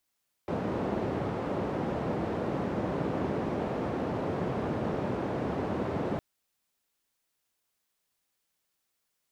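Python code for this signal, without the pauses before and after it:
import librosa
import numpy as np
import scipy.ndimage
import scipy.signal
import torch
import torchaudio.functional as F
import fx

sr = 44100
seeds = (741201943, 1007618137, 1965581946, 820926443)

y = fx.band_noise(sr, seeds[0], length_s=5.71, low_hz=100.0, high_hz=490.0, level_db=-31.5)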